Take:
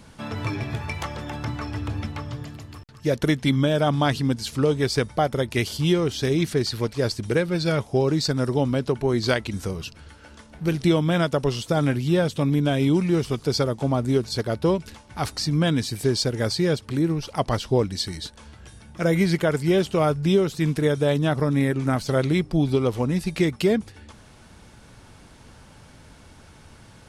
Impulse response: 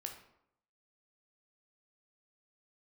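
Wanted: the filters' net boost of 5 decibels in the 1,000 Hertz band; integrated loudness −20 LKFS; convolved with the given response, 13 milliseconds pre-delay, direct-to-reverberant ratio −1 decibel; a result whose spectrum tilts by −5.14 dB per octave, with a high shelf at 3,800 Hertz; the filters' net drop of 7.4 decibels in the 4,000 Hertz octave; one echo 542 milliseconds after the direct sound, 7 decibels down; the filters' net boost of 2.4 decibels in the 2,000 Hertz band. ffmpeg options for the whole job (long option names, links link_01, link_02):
-filter_complex "[0:a]equalizer=frequency=1000:width_type=o:gain=7,equalizer=frequency=2000:width_type=o:gain=3.5,highshelf=frequency=3800:gain=-8,equalizer=frequency=4000:width_type=o:gain=-5.5,aecho=1:1:542:0.447,asplit=2[link_01][link_02];[1:a]atrim=start_sample=2205,adelay=13[link_03];[link_02][link_03]afir=irnorm=-1:irlink=0,volume=3.5dB[link_04];[link_01][link_04]amix=inputs=2:normalize=0,volume=-1.5dB"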